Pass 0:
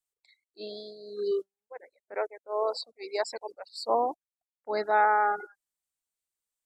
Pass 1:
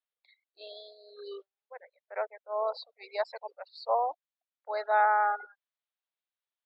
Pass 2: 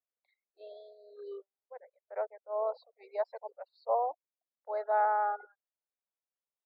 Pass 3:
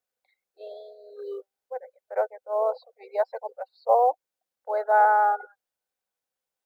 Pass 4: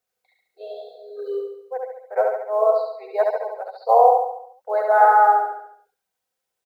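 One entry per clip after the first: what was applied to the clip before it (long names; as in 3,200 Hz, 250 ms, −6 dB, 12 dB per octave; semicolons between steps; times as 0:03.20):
elliptic band-pass filter 560–3,800 Hz, stop band 60 dB; dynamic equaliser 2,200 Hz, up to −3 dB, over −44 dBFS, Q 1.4
resonant band-pass 500 Hz, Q 1
hollow resonant body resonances 510/770/1,500 Hz, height 8 dB, ringing for 40 ms; floating-point word with a short mantissa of 6 bits; level +6.5 dB
notch comb filter 290 Hz; on a send: repeating echo 70 ms, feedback 51%, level −3 dB; on the sum: level +5.5 dB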